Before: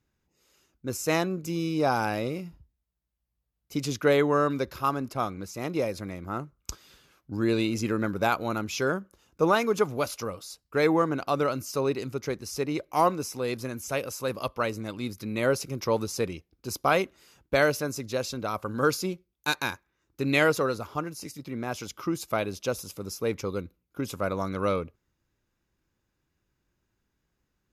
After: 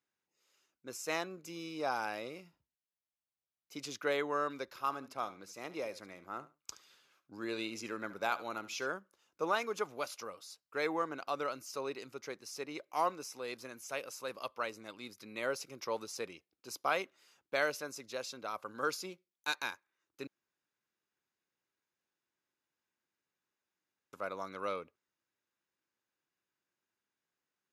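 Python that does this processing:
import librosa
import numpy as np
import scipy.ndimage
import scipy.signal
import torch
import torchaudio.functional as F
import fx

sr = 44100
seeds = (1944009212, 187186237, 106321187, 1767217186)

y = fx.echo_feedback(x, sr, ms=72, feedback_pct=18, wet_db=-16.0, at=(4.78, 8.87))
y = fx.edit(y, sr, fx.room_tone_fill(start_s=20.27, length_s=3.86), tone=tone)
y = fx.weighting(y, sr, curve='A')
y = F.gain(torch.from_numpy(y), -8.5).numpy()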